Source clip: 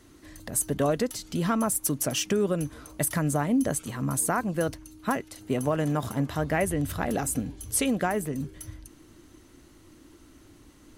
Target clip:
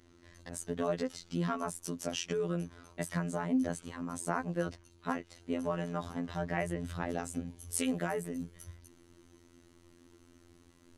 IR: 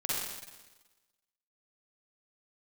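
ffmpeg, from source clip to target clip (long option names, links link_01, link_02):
-af "asetnsamples=nb_out_samples=441:pad=0,asendcmd='7.48 lowpass f 11000',lowpass=6000,afftfilt=real='hypot(re,im)*cos(PI*b)':imag='0':win_size=2048:overlap=0.75,volume=-4dB"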